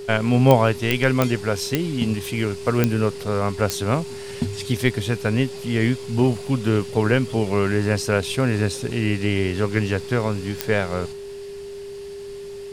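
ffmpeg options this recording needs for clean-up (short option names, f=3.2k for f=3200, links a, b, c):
-af "adeclick=t=4,bandreject=f=400:w=30"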